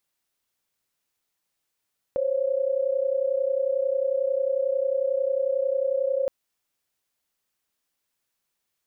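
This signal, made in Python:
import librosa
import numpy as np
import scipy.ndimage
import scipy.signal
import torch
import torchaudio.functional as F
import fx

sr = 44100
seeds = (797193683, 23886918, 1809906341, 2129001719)

y = fx.chord(sr, length_s=4.12, notes=(72, 73), wave='sine', level_db=-24.5)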